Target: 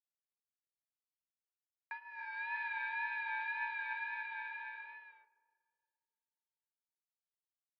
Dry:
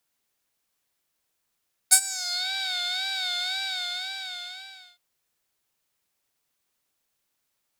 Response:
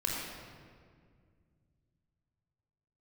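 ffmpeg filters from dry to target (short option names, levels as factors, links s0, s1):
-filter_complex "[0:a]acrusher=bits=9:mix=0:aa=0.000001,alimiter=limit=0.237:level=0:latency=1:release=440,flanger=delay=5.7:depth=9.9:regen=47:speed=0.3:shape=sinusoidal,aecho=1:1:281:0.501,acompressor=threshold=0.00501:ratio=1.5,asplit=2[s0][s1];[1:a]atrim=start_sample=2205,lowpass=1200,adelay=12[s2];[s1][s2]afir=irnorm=-1:irlink=0,volume=0.119[s3];[s0][s3]amix=inputs=2:normalize=0,highpass=f=210:t=q:w=0.5412,highpass=f=210:t=q:w=1.307,lowpass=f=2100:t=q:w=0.5176,lowpass=f=2100:t=q:w=0.7071,lowpass=f=2100:t=q:w=1.932,afreqshift=170,volume=2.11"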